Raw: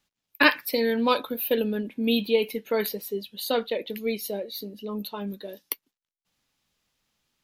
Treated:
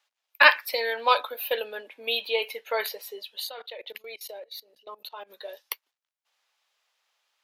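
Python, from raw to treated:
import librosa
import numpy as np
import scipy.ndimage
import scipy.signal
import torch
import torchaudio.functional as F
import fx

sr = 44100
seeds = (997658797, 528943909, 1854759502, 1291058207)

y = scipy.signal.sosfilt(scipy.signal.butter(4, 600.0, 'highpass', fs=sr, output='sos'), x)
y = fx.high_shelf(y, sr, hz=6200.0, db=-10.0)
y = fx.level_steps(y, sr, step_db=22, at=(3.46, 5.29), fade=0.02)
y = F.gain(torch.from_numpy(y), 4.5).numpy()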